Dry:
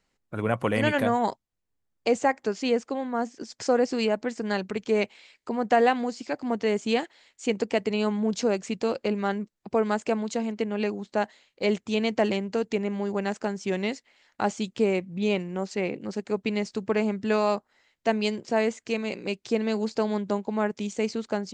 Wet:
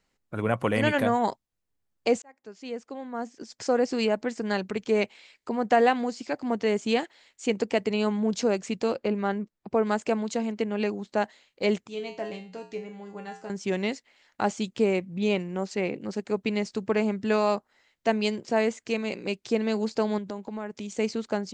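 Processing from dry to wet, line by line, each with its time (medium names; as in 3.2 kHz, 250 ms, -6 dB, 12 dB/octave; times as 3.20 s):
2.22–4.01 s: fade in
8.94–9.87 s: treble shelf 3.6 kHz -9 dB
11.87–13.50 s: feedback comb 61 Hz, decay 0.36 s, harmonics odd, mix 90%
20.18–20.92 s: compression 3:1, threshold -33 dBFS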